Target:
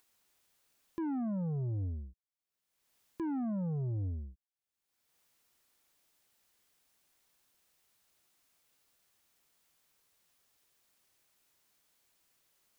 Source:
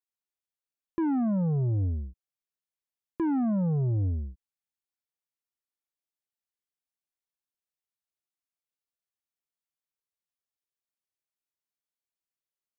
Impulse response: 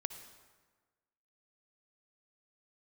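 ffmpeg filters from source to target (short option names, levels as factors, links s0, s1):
-af "acompressor=mode=upward:threshold=0.00708:ratio=2.5,volume=0.376"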